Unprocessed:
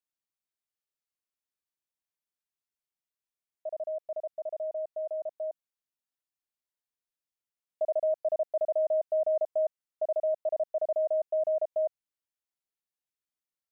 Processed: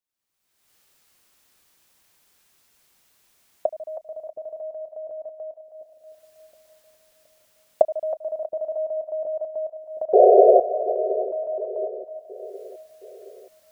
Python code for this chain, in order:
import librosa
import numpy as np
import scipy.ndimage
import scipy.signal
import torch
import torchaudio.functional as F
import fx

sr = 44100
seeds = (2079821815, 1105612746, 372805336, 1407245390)

y = fx.recorder_agc(x, sr, target_db=-30.0, rise_db_per_s=41.0, max_gain_db=30)
y = fx.spec_paint(y, sr, seeds[0], shape='noise', start_s=10.13, length_s=0.47, low_hz=370.0, high_hz=740.0, level_db=-12.0)
y = fx.echo_split(y, sr, split_hz=510.0, low_ms=720, high_ms=319, feedback_pct=52, wet_db=-11.5)